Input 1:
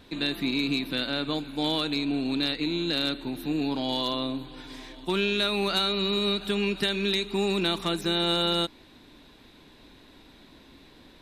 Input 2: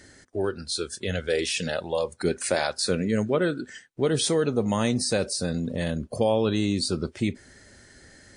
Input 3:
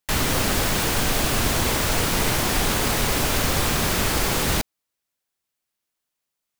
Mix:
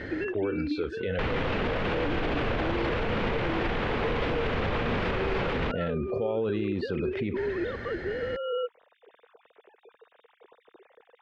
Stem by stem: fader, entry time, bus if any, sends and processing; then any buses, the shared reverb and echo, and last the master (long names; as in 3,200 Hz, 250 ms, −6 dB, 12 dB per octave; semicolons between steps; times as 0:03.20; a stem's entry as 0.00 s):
+3.0 dB, 0.00 s, no bus, no send, three sine waves on the formant tracks; low-pass filter 1,800 Hz 12 dB per octave; automatic ducking −10 dB, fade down 0.60 s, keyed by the second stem
−8.0 dB, 0.00 s, bus A, no send, envelope flattener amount 70%
+3.0 dB, 1.10 s, bus A, no send, no processing
bus A: 0.0 dB, low-pass filter 2,900 Hz 24 dB per octave; brickwall limiter −16 dBFS, peak gain reduction 8.5 dB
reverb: not used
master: parametric band 470 Hz +7.5 dB 0.32 octaves; brickwall limiter −20 dBFS, peak gain reduction 8 dB